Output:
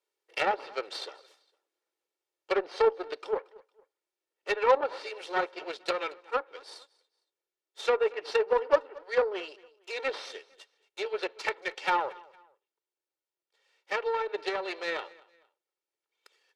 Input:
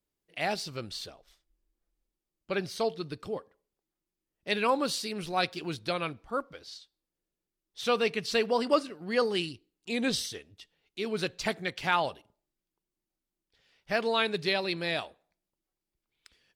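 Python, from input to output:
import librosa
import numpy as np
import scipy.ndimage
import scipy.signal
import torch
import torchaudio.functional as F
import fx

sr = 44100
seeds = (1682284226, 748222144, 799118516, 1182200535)

p1 = fx.lower_of_two(x, sr, delay_ms=2.2)
p2 = scipy.signal.sosfilt(scipy.signal.butter(4, 400.0, 'highpass', fs=sr, output='sos'), p1)
p3 = fx.high_shelf(p2, sr, hz=7700.0, db=-11.0)
p4 = fx.rider(p3, sr, range_db=10, speed_s=2.0)
p5 = p3 + F.gain(torch.from_numpy(p4), -0.5).numpy()
p6 = fx.env_lowpass_down(p5, sr, base_hz=1200.0, full_db=-21.5)
p7 = fx.cheby_harmonics(p6, sr, harmonics=(7,), levels_db=(-25,), full_scale_db=-10.0)
y = p7 + fx.echo_feedback(p7, sr, ms=229, feedback_pct=34, wet_db=-23, dry=0)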